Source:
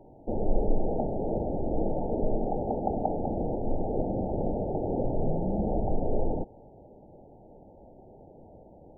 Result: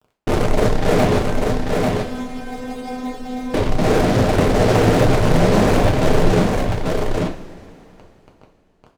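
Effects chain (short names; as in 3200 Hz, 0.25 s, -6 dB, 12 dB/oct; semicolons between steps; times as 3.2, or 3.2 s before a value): median filter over 41 samples; reverb removal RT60 1.4 s; fuzz box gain 46 dB, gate -45 dBFS; 1.18–3.54 metallic resonator 250 Hz, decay 0.4 s, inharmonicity 0.002; echo 0.842 s -3.5 dB; two-slope reverb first 0.37 s, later 3.1 s, from -18 dB, DRR 1 dB; Doppler distortion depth 0.45 ms; gain -3 dB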